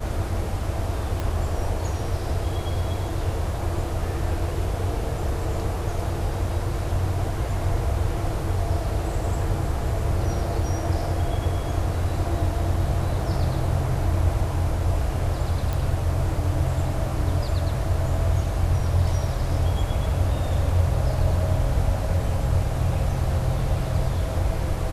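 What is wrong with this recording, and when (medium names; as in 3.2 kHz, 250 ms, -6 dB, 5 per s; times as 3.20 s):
1.20 s: pop -15 dBFS
15.73 s: pop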